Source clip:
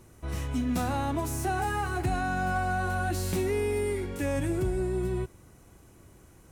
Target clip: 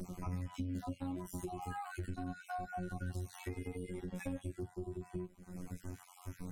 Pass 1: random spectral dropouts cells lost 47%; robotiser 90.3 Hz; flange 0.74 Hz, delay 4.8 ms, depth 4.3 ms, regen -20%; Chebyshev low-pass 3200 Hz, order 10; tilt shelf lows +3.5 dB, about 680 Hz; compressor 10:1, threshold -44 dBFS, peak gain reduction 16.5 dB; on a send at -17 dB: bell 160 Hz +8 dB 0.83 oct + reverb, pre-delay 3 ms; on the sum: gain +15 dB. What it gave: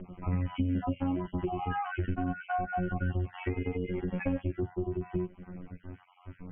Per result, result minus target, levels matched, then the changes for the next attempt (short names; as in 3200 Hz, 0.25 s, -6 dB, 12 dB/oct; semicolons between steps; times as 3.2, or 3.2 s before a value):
compressor: peak gain reduction -10.5 dB; 4000 Hz band -4.5 dB
change: compressor 10:1, threshold -55 dBFS, peak gain reduction 26 dB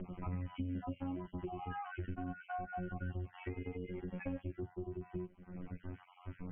4000 Hz band -3.5 dB
remove: Chebyshev low-pass 3200 Hz, order 10